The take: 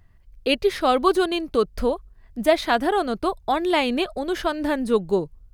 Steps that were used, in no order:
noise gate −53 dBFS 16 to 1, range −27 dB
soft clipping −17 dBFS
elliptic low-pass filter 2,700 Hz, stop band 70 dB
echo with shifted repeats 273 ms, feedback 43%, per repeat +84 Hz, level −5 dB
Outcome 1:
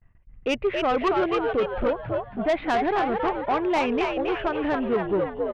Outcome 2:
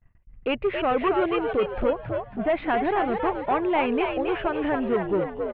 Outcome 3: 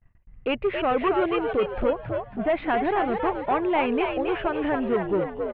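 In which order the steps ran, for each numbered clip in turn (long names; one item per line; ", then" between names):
noise gate, then elliptic low-pass filter, then echo with shifted repeats, then soft clipping
soft clipping, then elliptic low-pass filter, then noise gate, then echo with shifted repeats
soft clipping, then elliptic low-pass filter, then echo with shifted repeats, then noise gate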